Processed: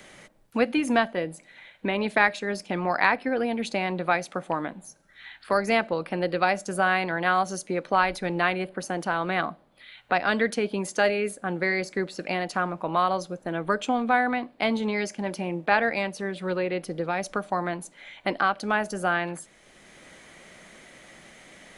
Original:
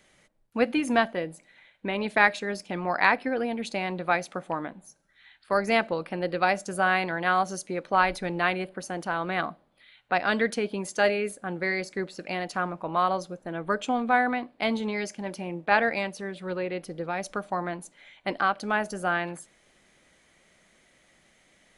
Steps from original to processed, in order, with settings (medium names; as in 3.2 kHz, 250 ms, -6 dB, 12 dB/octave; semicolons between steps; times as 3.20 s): three bands compressed up and down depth 40%; trim +1.5 dB